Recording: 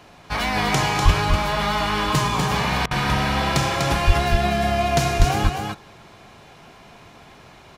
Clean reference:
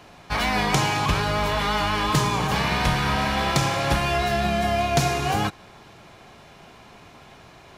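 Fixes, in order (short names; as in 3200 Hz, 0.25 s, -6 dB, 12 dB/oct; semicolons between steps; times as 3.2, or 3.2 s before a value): 1.04–1.16 HPF 140 Hz 24 dB/oct; 4.06–4.18 HPF 140 Hz 24 dB/oct; 5.18–5.3 HPF 140 Hz 24 dB/oct; interpolate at 2.86, 49 ms; inverse comb 0.246 s -4.5 dB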